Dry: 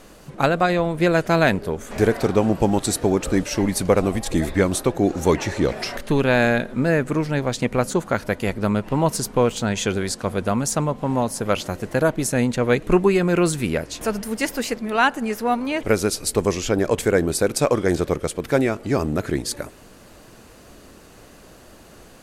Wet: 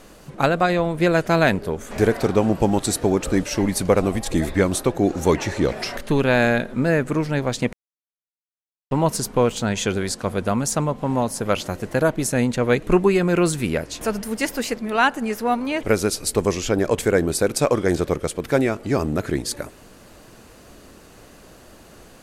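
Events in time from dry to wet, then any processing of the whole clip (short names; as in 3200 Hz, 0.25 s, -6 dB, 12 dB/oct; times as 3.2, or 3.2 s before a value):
7.73–8.91 mute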